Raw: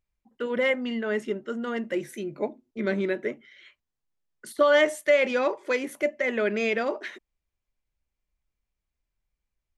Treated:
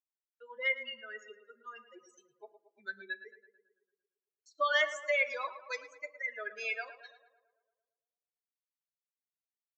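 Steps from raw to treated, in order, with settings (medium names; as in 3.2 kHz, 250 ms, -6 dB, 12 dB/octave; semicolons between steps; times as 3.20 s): expander on every frequency bin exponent 3; gate with hold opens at -58 dBFS; high-pass 1.2 kHz 12 dB/octave; comb 1.8 ms, depth 45%; tape echo 112 ms, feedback 65%, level -11 dB, low-pass 1.9 kHz; on a send at -14 dB: reverberation RT60 0.35 s, pre-delay 5 ms; on the sum: resampled via 16 kHz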